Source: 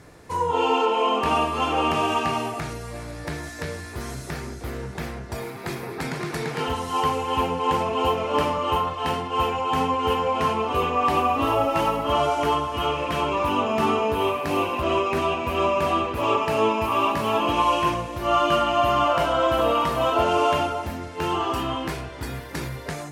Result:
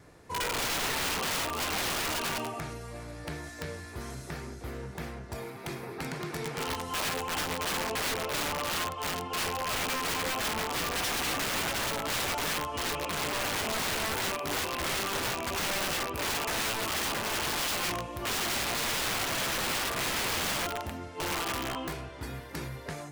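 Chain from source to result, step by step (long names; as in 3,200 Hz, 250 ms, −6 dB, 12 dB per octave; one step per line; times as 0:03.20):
pitch vibrato 0.68 Hz 6.6 cents
wrap-around overflow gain 19 dB
level −7 dB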